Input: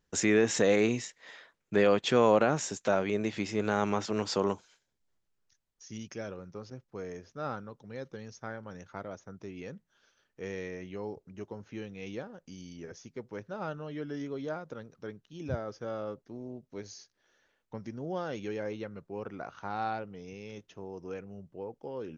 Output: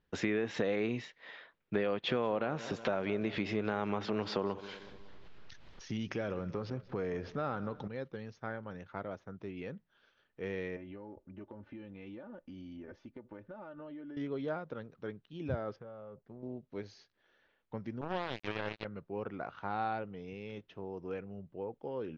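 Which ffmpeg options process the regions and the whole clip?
-filter_complex "[0:a]asettb=1/sr,asplit=3[a][b][c];[a]atrim=end=1.904[d];[b]atrim=start=1.9:end=7.88,asetpts=PTS-STARTPTS,afade=t=in:d=0.004:c=qsin,afade=t=out:st=5.976:d=0.004:c=qsin,acompressor=mode=upward:threshold=-27dB:ratio=2.5:attack=3.2:release=140:knee=2.83:detection=peak,aecho=1:1:185|370|555|740:0.112|0.0561|0.0281|0.014,atrim=end_sample=263718[e];[c]atrim=start=7.876[f];[d][e]acrossfade=d=0.004:c1=hsin:c2=qsin[g];[g][f]acrossfade=d=0.004:c1=qsin:c2=hsin,asettb=1/sr,asplit=3[h][i][j];[h]atrim=end=10.764[k];[i]atrim=start=10.76:end=14.17,asetpts=PTS-STARTPTS,afade=t=in:d=0.004:c=qsin,afade=t=out:st=3.406:d=0.004:c=qsin,lowpass=f=1.5k:p=1,aecho=1:1:3.4:0.68,atrim=end_sample=150381,acompressor=threshold=-43dB:ratio=10:attack=3.2:release=140:knee=1:detection=peak[l];[j]atrim=start=14.166[m];[k][l]acrossfade=d=0.004:c1=hsin:c2=qsin[n];[n][m]acrossfade=d=0.004:c1=qsin:c2=hsin,asettb=1/sr,asplit=3[o][p][q];[o]atrim=end=15.764[r];[p]atrim=start=15.76:end=16.43,asetpts=PTS-STARTPTS,afade=t=in:d=0.004:c=qsin,afade=t=out:st=0.666:d=0.004:c=qsin,lowpass=f=1k:p=1,equalizer=f=300:w=3.8:g=-13.5,acompressor=threshold=-44dB:ratio=10:attack=3.2:release=140:knee=1:detection=peak[s];[q]atrim=start=16.426[t];[r][s]acrossfade=d=0.004:c1=hsin:c2=qsin[u];[u][t]acrossfade=d=0.004:c1=qsin:c2=hsin,asettb=1/sr,asplit=3[v][w][x];[v]atrim=end=18.014[y];[w]atrim=start=18.01:end=18.85,asetpts=PTS-STARTPTS,afade=t=in:d=0.004:c=qsin,afade=t=out:st=0.836:d=0.004:c=qsin,highshelf=f=3.8k:g=9.5,acrusher=bits=4:mix=0:aa=0.5[z];[x]atrim=start=18.846[aa];[y][z]acrossfade=d=0.004:c1=hsin:c2=qsin[ab];[ab][aa]acrossfade=d=0.004:c1=qsin:c2=hsin,lowpass=f=3.9k:w=0.5412,lowpass=f=3.9k:w=1.3066,acompressor=threshold=-29dB:ratio=6"

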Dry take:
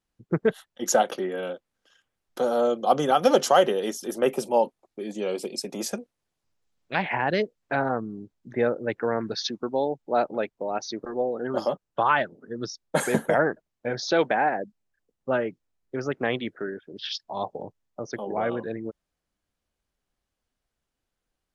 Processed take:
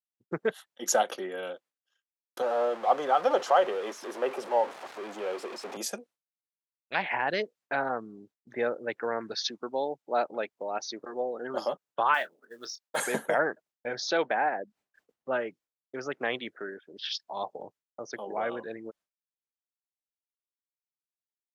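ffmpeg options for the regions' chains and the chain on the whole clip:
-filter_complex "[0:a]asettb=1/sr,asplit=3[a][b][c];[a]atrim=end=2.424[d];[b]atrim=start=2.42:end=5.77,asetpts=PTS-STARTPTS,afade=t=in:d=0.004:c=qsin,afade=t=out:st=3.346:d=0.004:c=qsin,aeval=exprs='val(0)+0.5*0.0447*sgn(val(0))':c=same,bandpass=f=820:t=q:w=0.73[e];[c]atrim=start=5.766[f];[d][e]acrossfade=d=0.004:c1=hsin:c2=qsin[g];[g][f]acrossfade=d=0.004:c1=qsin:c2=hsin,asettb=1/sr,asplit=3[h][i][j];[h]atrim=end=12.144[k];[i]atrim=start=12.14:end=12.98,asetpts=PTS-STARTPTS,afade=t=in:d=0.004:c=qsin,afade=t=out:st=0.836:d=0.004:c=qsin,highpass=f=780:p=1,acrusher=bits=7:mode=log:mix=0:aa=0.000001,asplit=2[l][m];[m]adelay=24,volume=-12dB[n];[l][n]amix=inputs=2:normalize=0,atrim=end_sample=37044[o];[j]atrim=start=12.976[p];[k][o]acrossfade=d=0.004:c1=hsin:c2=qsin[q];[q][p]acrossfade=d=0.004:c1=qsin:c2=hsin,asettb=1/sr,asplit=3[r][s][t];[r]atrim=end=14.174[u];[s]atrim=start=14.17:end=15.36,asetpts=PTS-STARTPTS,afade=t=in:d=0.004:c=qsin,afade=t=out:st=1.186:d=0.004:c=qsin,highshelf=f=3.8k:g=-9,acompressor=mode=upward:threshold=-35dB:ratio=2.5:attack=3.2:release=140:knee=2.83:detection=peak[v];[t]atrim=start=15.356[w];[u][v]acrossfade=d=0.004:c1=hsin:c2=qsin[x];[x][w]acrossfade=d=0.004:c1=qsin:c2=hsin,highpass=f=600:p=1,agate=range=-33dB:threshold=-52dB:ratio=3:detection=peak,volume=-1.5dB"

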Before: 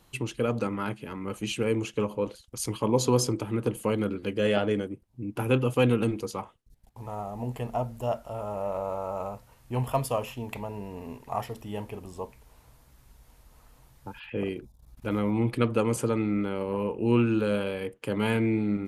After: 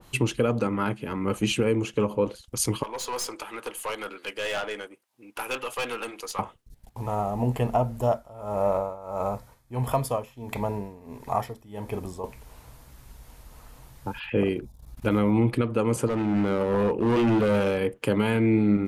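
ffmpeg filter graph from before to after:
-filter_complex "[0:a]asettb=1/sr,asplit=3[a][b][c];[a]atrim=end=2.834[d];[b]atrim=start=2.83:end=6.39,asetpts=PTS-STARTPTS,afade=t=in:d=0.004:c=qsin,afade=t=out:st=3.556:d=0.004:c=qsin,highpass=950,aeval=exprs='(tanh(39.8*val(0)+0.25)-tanh(0.25))/39.8':c=same[e];[c]atrim=start=6.386[f];[d][e]acrossfade=d=0.004:c1=hsin:c2=qsin[g];[g][f]acrossfade=d=0.004:c1=qsin:c2=hsin,asettb=1/sr,asplit=3[h][i][j];[h]atrim=end=8.004[k];[i]atrim=start=8:end=12.24,asetpts=PTS-STARTPTS,afade=t=in:d=0.004:c=qsin,afade=t=out:st=4.236:d=0.004:c=qsin,bandreject=f=2.8k:w=6.5,tremolo=f=1.5:d=0.86[l];[j]atrim=start=12.236[m];[k][l]acrossfade=d=0.004:c1=hsin:c2=qsin[n];[n][m]acrossfade=d=0.004:c1=qsin:c2=hsin,asettb=1/sr,asplit=3[o][p][q];[o]atrim=end=16.074[r];[p]atrim=start=16.07:end=17.78,asetpts=PTS-STARTPTS,afade=t=in:d=0.004:c=qsin,afade=t=out:st=1.706:d=0.004:c=qsin,bandreject=f=60:t=h:w=6,bandreject=f=120:t=h:w=6,bandreject=f=180:t=h:w=6,bandreject=f=240:t=h:w=6,bandreject=f=300:t=h:w=6,bandreject=f=360:t=h:w=6,asoftclip=type=hard:threshold=-27dB[s];[q]atrim=start=17.776[t];[r][s]acrossfade=d=0.004:c1=hsin:c2=qsin[u];[u][t]acrossfade=d=0.004:c1=qsin:c2=hsin,alimiter=limit=-20.5dB:level=0:latency=1:release=453,adynamicequalizer=threshold=0.00398:dfrequency=2200:dqfactor=0.7:tfrequency=2200:tqfactor=0.7:attack=5:release=100:ratio=0.375:range=2:mode=cutabove:tftype=highshelf,volume=8dB"

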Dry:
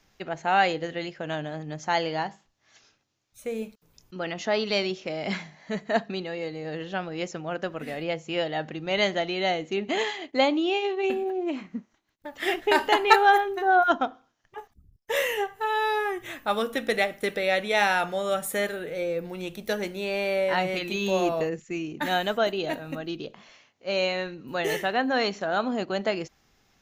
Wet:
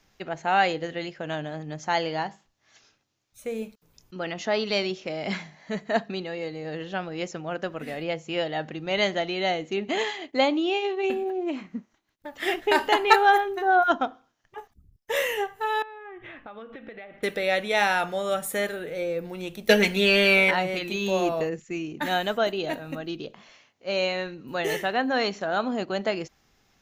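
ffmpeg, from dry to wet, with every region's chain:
-filter_complex "[0:a]asettb=1/sr,asplit=3[a][b][c];[a]atrim=end=15.824[d];[b]atrim=start=15.82:end=17.23,asetpts=PTS-STARTPTS,afade=t=in:d=0.004:c=qsin,afade=t=out:st=1.406:d=0.004:c=qsin,lowpass=f=2.9k:w=0.5412,lowpass=f=2.9k:w=1.3066,acompressor=threshold=-38dB:ratio=10:attack=3.2:release=140:knee=1:detection=peak[e];[c]atrim=start=17.226[f];[d][e]acrossfade=d=0.004:c1=hsin:c2=qsin[g];[g][f]acrossfade=d=0.004:c1=qsin:c2=hsin,asettb=1/sr,asplit=3[h][i][j];[h]atrim=end=19.694[k];[i]atrim=start=19.69:end=20.51,asetpts=PTS-STARTPTS,afade=t=in:d=0.004:c=qsin,afade=t=out:st=0.816:d=0.004:c=qsin,equalizer=f=2.6k:t=o:w=1.3:g=7.5,aecho=1:1:4.4:0.72,atrim=end_sample=36162,acontrast=74[l];[j]atrim=start=20.506[m];[k][l]acrossfade=d=0.004:c1=hsin:c2=qsin[n];[n][m]acrossfade=d=0.004:c1=qsin:c2=hsin"

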